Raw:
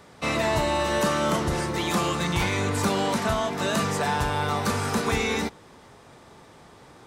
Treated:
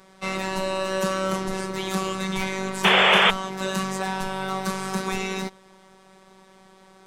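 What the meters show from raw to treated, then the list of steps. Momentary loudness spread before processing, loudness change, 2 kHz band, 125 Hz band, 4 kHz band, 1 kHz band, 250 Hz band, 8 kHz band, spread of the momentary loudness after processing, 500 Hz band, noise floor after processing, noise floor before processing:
3 LU, +1.5 dB, +4.5 dB, -5.0 dB, +6.0 dB, +0.5 dB, -1.5 dB, -2.0 dB, 13 LU, -0.5 dB, -53 dBFS, -51 dBFS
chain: robotiser 190 Hz; painted sound noise, 2.84–3.31, 360–3600 Hz -17 dBFS

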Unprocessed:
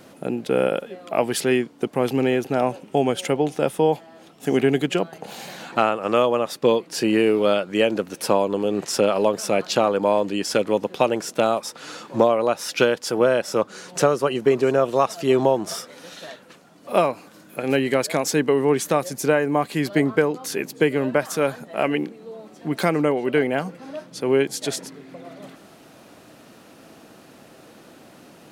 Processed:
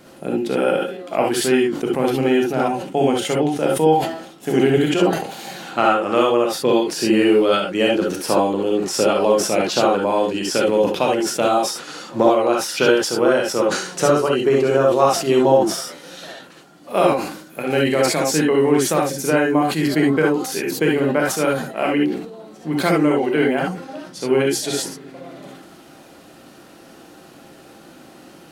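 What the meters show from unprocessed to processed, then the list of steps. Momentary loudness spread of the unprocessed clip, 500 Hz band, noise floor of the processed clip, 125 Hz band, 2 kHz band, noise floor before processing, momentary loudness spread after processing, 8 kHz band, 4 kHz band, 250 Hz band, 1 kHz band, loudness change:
13 LU, +3.0 dB, -45 dBFS, +3.0 dB, +3.5 dB, -49 dBFS, 11 LU, +5.0 dB, +5.0 dB, +4.5 dB, +4.0 dB, +3.5 dB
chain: non-linear reverb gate 90 ms rising, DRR -1.5 dB; sustainer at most 78 dB/s; gain -1 dB

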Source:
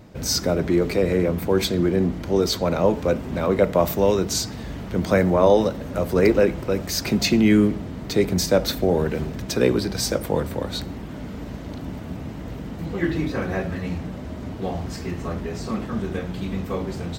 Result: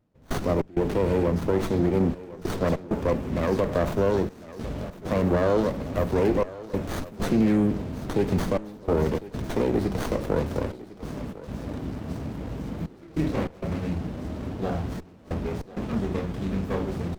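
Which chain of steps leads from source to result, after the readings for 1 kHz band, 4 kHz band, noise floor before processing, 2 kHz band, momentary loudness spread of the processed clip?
-3.5 dB, -14.5 dB, -34 dBFS, -6.5 dB, 11 LU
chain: de-hum 182.2 Hz, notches 39; dynamic EQ 3700 Hz, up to -4 dB, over -39 dBFS, Q 0.94; limiter -13 dBFS, peak gain reduction 8 dB; step gate "..xx.xxxxxxxxx" 98 bpm -24 dB; thinning echo 1.054 s, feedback 62%, high-pass 230 Hz, level -16 dB; running maximum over 17 samples

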